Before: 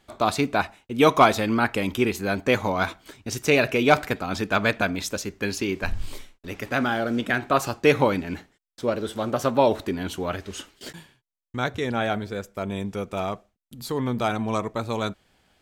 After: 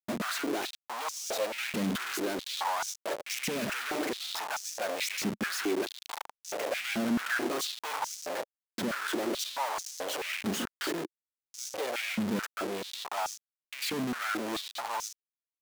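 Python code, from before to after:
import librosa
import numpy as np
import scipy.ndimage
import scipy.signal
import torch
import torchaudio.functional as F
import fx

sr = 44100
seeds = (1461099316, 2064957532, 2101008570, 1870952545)

y = fx.tube_stage(x, sr, drive_db=29.0, bias=0.75)
y = fx.schmitt(y, sr, flips_db=-49.0)
y = fx.filter_held_highpass(y, sr, hz=4.6, low_hz=210.0, high_hz=6000.0)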